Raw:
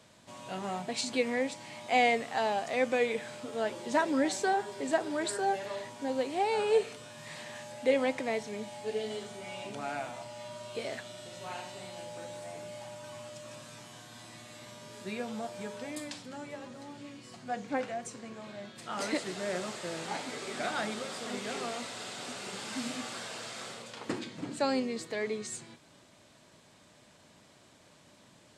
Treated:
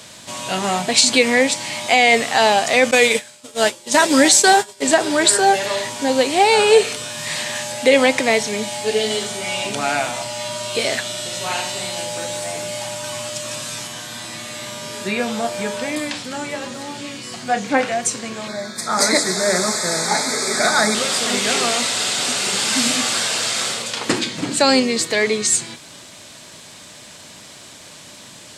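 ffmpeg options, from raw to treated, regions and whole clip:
ffmpeg -i in.wav -filter_complex "[0:a]asettb=1/sr,asplit=3[link_01][link_02][link_03];[link_01]atrim=end=2.914[link_04];[link_02]atrim=start=2.91:end=4.82,asetpts=PTS-STARTPTS,afade=type=in:duration=0.004:curve=qsin,afade=type=out:start_time=1.906:duration=0.004:curve=qsin,highshelf=frequency=4400:gain=9,agate=range=-33dB:threshold=-30dB:ratio=3:release=100:detection=peak[link_05];[link_03]atrim=start=4.816[link_06];[link_04][link_05]acrossfade=duration=0.004:curve1=hsin:curve2=qsin[link_07];[link_07][link_06]acrossfade=duration=0.004:curve1=qsin:curve2=hsin,asettb=1/sr,asplit=3[link_08][link_09][link_10];[link_08]atrim=end=13.874[link_11];[link_09]atrim=start=13.87:end=17.92,asetpts=PTS-STARTPTS,afade=type=in:duration=0.004:curve=qsin,afade=type=out:start_time=4.046:duration=0.004:curve=qsin,acrossover=split=3000[link_12][link_13];[link_13]acompressor=threshold=-55dB:ratio=4:attack=1:release=60[link_14];[link_12][link_14]amix=inputs=2:normalize=0,asplit=2[link_15][link_16];[link_16]adelay=30,volume=-11.5dB[link_17];[link_15][link_17]amix=inputs=2:normalize=0,atrim=end_sample=178605[link_18];[link_10]atrim=start=17.916[link_19];[link_11][link_18]acrossfade=duration=0.004:curve1=hsin:curve2=qsin[link_20];[link_20][link_19]acrossfade=duration=0.004:curve1=qsin:curve2=hsin,asettb=1/sr,asplit=3[link_21][link_22][link_23];[link_21]atrim=end=18.484[link_24];[link_22]atrim=start=18.48:end=20.95,asetpts=PTS-STARTPTS,afade=type=in:duration=0.004:curve=qsin,afade=type=out:start_time=2.466:duration=0.004:curve=qsin,asuperstop=centerf=2900:order=4:qfactor=1.9,bandreject=frequency=50:width_type=h:width=6,bandreject=frequency=100:width_type=h:width=6,bandreject=frequency=150:width_type=h:width=6,bandreject=frequency=200:width_type=h:width=6,bandreject=frequency=250:width_type=h:width=6,bandreject=frequency=300:width_type=h:width=6,bandreject=frequency=350:width_type=h:width=6,bandreject=frequency=400:width_type=h:width=6,aecho=1:1:4.7:0.36,atrim=end_sample=108927[link_25];[link_23]atrim=start=20.946[link_26];[link_24][link_25]acrossfade=duration=0.004:curve1=hsin:curve2=qsin[link_27];[link_27][link_26]acrossfade=duration=0.004:curve1=qsin:curve2=hsin,highshelf=frequency=2100:gain=11,alimiter=level_in=15dB:limit=-1dB:release=50:level=0:latency=1,volume=-1dB" out.wav

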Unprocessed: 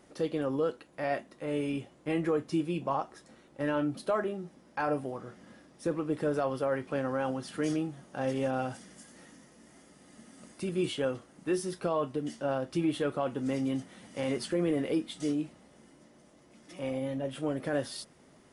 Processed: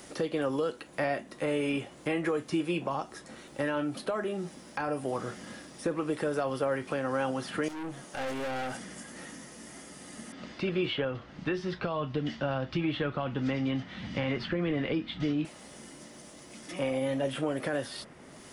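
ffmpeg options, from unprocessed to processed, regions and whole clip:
ffmpeg -i in.wav -filter_complex "[0:a]asettb=1/sr,asplit=3[link_01][link_02][link_03];[link_01]atrim=end=7.684[link_04];[link_02]atrim=start=7.68:end=8.75,asetpts=PTS-STARTPTS,afade=type=in:duration=0.004:curve=qsin,afade=type=out:start_time=1.066:duration=0.004:curve=qsin,equalizer=frequency=74:width_type=o:width=1.6:gain=-12,bandreject=frequency=60:width_type=h:width=6,bandreject=frequency=120:width_type=h:width=6,bandreject=frequency=180:width_type=h:width=6,bandreject=frequency=240:width_type=h:width=6,bandreject=frequency=300:width_type=h:width=6,bandreject=frequency=360:width_type=h:width=6,bandreject=frequency=420:width_type=h:width=6,bandreject=frequency=480:width_type=h:width=6,aeval=exprs='(tanh(112*val(0)+0.35)-tanh(0.35))/112':channel_layout=same[link_05];[link_03]atrim=start=8.746[link_06];[link_04][link_05]acrossfade=duration=0.004:curve1=hsin:curve2=qsin[link_07];[link_07][link_06]acrossfade=duration=0.004:curve1=qsin:curve2=hsin,asettb=1/sr,asplit=3[link_08][link_09][link_10];[link_08]atrim=end=10.324[link_11];[link_09]atrim=start=10.32:end=15.45,asetpts=PTS-STARTPTS,afade=type=in:duration=0.004:curve=qsin,afade=type=out:start_time=5.126:duration=0.004:curve=qsin,lowpass=frequency=4200:width=0.5412,lowpass=frequency=4200:width=1.3066,asubboost=boost=8:cutoff=170[link_12];[link_10]atrim=start=15.446[link_13];[link_11][link_12]acrossfade=duration=0.004:curve1=hsin:curve2=qsin[link_14];[link_14][link_13]acrossfade=duration=0.004:curve1=qsin:curve2=hsin,highshelf=frequency=2300:gain=11,acrossover=split=390|2500[link_15][link_16][link_17];[link_15]acompressor=threshold=-42dB:ratio=4[link_18];[link_16]acompressor=threshold=-37dB:ratio=4[link_19];[link_17]acompressor=threshold=-58dB:ratio=4[link_20];[link_18][link_19][link_20]amix=inputs=3:normalize=0,alimiter=level_in=4dB:limit=-24dB:level=0:latency=1:release=336,volume=-4dB,volume=8dB" out.wav

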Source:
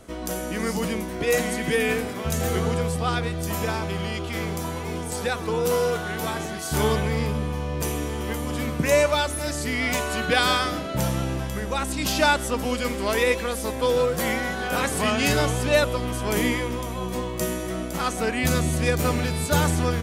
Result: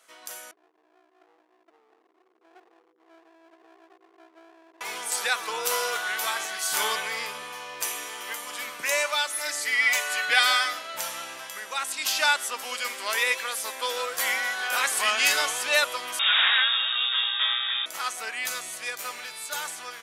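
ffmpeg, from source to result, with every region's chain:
ffmpeg -i in.wav -filter_complex "[0:a]asettb=1/sr,asplit=3[link_01][link_02][link_03];[link_01]atrim=end=0.514[link_04];[link_02]atrim=start=0.51:end=4.81,asetpts=PTS-STARTPTS,afade=type=in:duration=0.004:curve=qsin,afade=type=out:start_time=4.296:duration=0.004:curve=qsin,asuperpass=centerf=340:order=4:qfactor=5.5,aeval=exprs='clip(val(0),-1,0.00531)':channel_layout=same[link_05];[link_03]atrim=start=4.806[link_06];[link_04][link_05]acrossfade=duration=0.004:curve1=hsin:curve2=qsin[link_07];[link_07][link_06]acrossfade=duration=0.004:curve1=qsin:curve2=hsin,asettb=1/sr,asplit=3[link_08][link_09][link_10];[link_08]atrim=end=9.334[link_11];[link_09]atrim=start=9.33:end=10.73,asetpts=PTS-STARTPTS,afade=type=in:duration=0.004:curve=qsin,afade=type=out:start_time=1.396:duration=0.004:curve=qsin,equalizer=frequency=2000:width_type=o:width=0.31:gain=6,aecho=1:1:6.6:0.54,atrim=end_sample=61740[link_12];[link_10]atrim=start=10.726[link_13];[link_11][link_12]acrossfade=duration=0.004:curve1=hsin:curve2=qsin[link_14];[link_14][link_13]acrossfade=duration=0.004:curve1=qsin:curve2=hsin,asettb=1/sr,asplit=3[link_15][link_16][link_17];[link_15]atrim=end=16.194[link_18];[link_16]atrim=start=16.19:end=17.86,asetpts=PTS-STARTPTS,afade=type=in:duration=0.004:curve=qsin,afade=type=out:start_time=1.666:duration=0.004:curve=qsin,equalizer=frequency=2500:width=1.4:gain=12,aeval=exprs='(mod(5.31*val(0)+1,2)-1)/5.31':channel_layout=same,lowpass=frequency=3200:width_type=q:width=0.5098,lowpass=frequency=3200:width_type=q:width=0.6013,lowpass=frequency=3200:width_type=q:width=0.9,lowpass=frequency=3200:width_type=q:width=2.563,afreqshift=-3800[link_19];[link_17]atrim=start=17.856[link_20];[link_18][link_19]acrossfade=duration=0.004:curve1=hsin:curve2=qsin[link_21];[link_21][link_20]acrossfade=duration=0.004:curve1=qsin:curve2=hsin,highpass=1200,dynaudnorm=framelen=270:gausssize=21:maxgain=11.5dB,volume=-5dB" out.wav

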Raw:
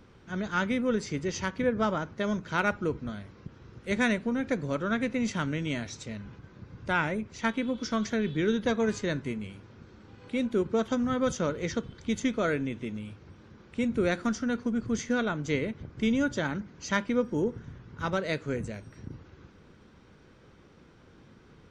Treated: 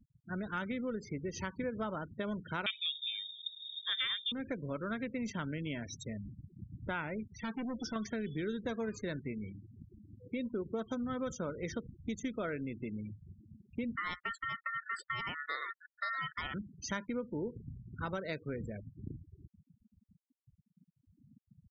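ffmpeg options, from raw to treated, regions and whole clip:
ffmpeg -i in.wav -filter_complex "[0:a]asettb=1/sr,asplit=3[link_01][link_02][link_03];[link_01]atrim=end=0.904[link_04];[link_02]atrim=start=0.9:end=1.37,asetpts=PTS-STARTPTS,afade=type=in:duration=0.004:curve=qsin,afade=type=out:start_time=0.466:duration=0.004:curve=qsin,lowpass=frequency=1900:poles=1,aemphasis=mode=production:type=50fm[link_05];[link_03]atrim=start=1.366[link_06];[link_04][link_05]acrossfade=duration=0.004:curve1=hsin:curve2=qsin[link_07];[link_07][link_06]acrossfade=duration=0.004:curve1=qsin:curve2=hsin,asettb=1/sr,asplit=3[link_08][link_09][link_10];[link_08]atrim=end=2.664[link_11];[link_09]atrim=start=2.66:end=4.32,asetpts=PTS-STARTPTS,afade=type=in:duration=0.004:curve=qsin,afade=type=out:start_time=1.656:duration=0.004:curve=qsin,acontrast=23,lowpass=frequency=3200:width_type=q:width=0.5098,lowpass=frequency=3200:width_type=q:width=0.6013,lowpass=frequency=3200:width_type=q:width=0.9,lowpass=frequency=3200:width_type=q:width=2.563,afreqshift=-3800[link_12];[link_10]atrim=start=4.316[link_13];[link_11][link_12]acrossfade=duration=0.004:curve1=hsin:curve2=qsin[link_14];[link_14][link_13]acrossfade=duration=0.004:curve1=qsin:curve2=hsin,asettb=1/sr,asplit=3[link_15][link_16][link_17];[link_15]atrim=end=7.324[link_18];[link_16]atrim=start=7.32:end=7.96,asetpts=PTS-STARTPTS,afade=type=in:duration=0.004:curve=qsin,afade=type=out:start_time=0.636:duration=0.004:curve=qsin,asoftclip=type=hard:threshold=-32dB,adynamicequalizer=threshold=0.00251:dfrequency=6100:dqfactor=0.7:tfrequency=6100:tqfactor=0.7:attack=5:release=100:ratio=0.375:range=2.5:mode=cutabove:tftype=highshelf[link_19];[link_17]atrim=start=7.956[link_20];[link_18][link_19]acrossfade=duration=0.004:curve1=hsin:curve2=qsin[link_21];[link_21][link_20]acrossfade=duration=0.004:curve1=qsin:curve2=hsin,asettb=1/sr,asplit=3[link_22][link_23][link_24];[link_22]atrim=end=13.964[link_25];[link_23]atrim=start=13.96:end=16.54,asetpts=PTS-STARTPTS,afade=type=in:duration=0.004:curve=qsin,afade=type=out:start_time=2.576:duration=0.004:curve=qsin,agate=range=-33dB:threshold=-34dB:ratio=3:release=100:detection=peak,aeval=exprs='val(0)*sin(2*PI*1600*n/s)':channel_layout=same[link_26];[link_24]atrim=start=16.536[link_27];[link_25][link_26]acrossfade=duration=0.004:curve1=hsin:curve2=qsin[link_28];[link_28][link_27]acrossfade=duration=0.004:curve1=qsin:curve2=hsin,afftfilt=real='re*gte(hypot(re,im),0.0141)':imag='im*gte(hypot(re,im),0.0141)':win_size=1024:overlap=0.75,acompressor=threshold=-36dB:ratio=3,volume=-1dB" out.wav

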